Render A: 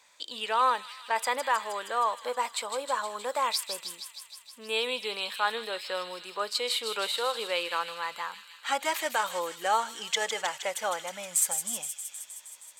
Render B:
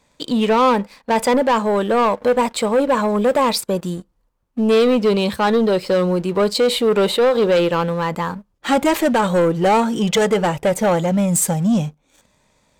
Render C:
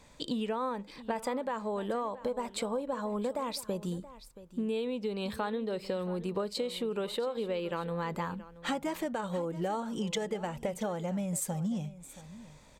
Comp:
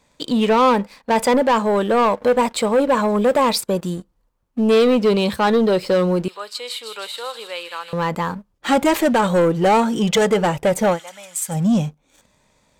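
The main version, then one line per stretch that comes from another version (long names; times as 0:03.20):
B
0:06.28–0:07.93: punch in from A
0:10.95–0:11.52: punch in from A, crossfade 0.10 s
not used: C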